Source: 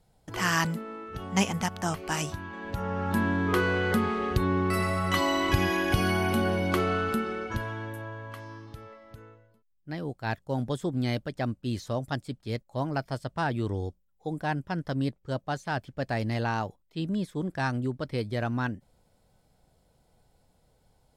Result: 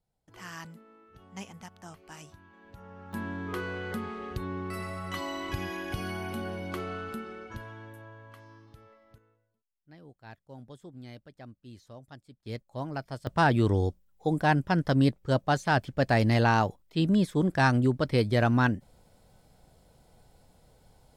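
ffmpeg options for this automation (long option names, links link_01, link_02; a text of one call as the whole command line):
ffmpeg -i in.wav -af "asetnsamples=nb_out_samples=441:pad=0,asendcmd='3.13 volume volume -9.5dB;9.18 volume volume -17dB;12.46 volume volume -5dB;13.27 volume volume 6dB',volume=-17dB" out.wav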